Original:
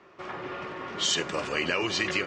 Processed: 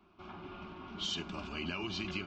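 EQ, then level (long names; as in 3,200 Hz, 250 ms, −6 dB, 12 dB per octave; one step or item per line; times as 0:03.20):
head-to-tape spacing loss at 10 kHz 37 dB
flat-topped bell 570 Hz −14 dB 2.6 octaves
phaser with its sweep stopped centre 500 Hz, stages 6
+7.0 dB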